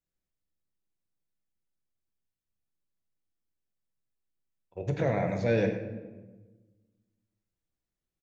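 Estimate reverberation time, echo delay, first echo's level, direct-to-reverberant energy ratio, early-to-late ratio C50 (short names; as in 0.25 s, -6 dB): 1.3 s, 99 ms, -12.0 dB, 4.0 dB, 7.0 dB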